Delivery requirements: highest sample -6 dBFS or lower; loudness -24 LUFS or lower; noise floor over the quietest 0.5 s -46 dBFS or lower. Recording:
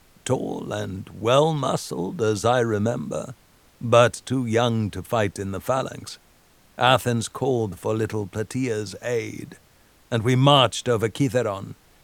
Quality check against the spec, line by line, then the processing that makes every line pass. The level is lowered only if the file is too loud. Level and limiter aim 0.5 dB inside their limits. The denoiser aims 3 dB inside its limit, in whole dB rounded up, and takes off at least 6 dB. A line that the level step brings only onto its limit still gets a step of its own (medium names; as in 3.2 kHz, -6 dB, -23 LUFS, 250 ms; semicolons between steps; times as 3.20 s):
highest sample -2.5 dBFS: fail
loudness -23.0 LUFS: fail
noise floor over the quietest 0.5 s -56 dBFS: pass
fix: trim -1.5 dB; peak limiter -6.5 dBFS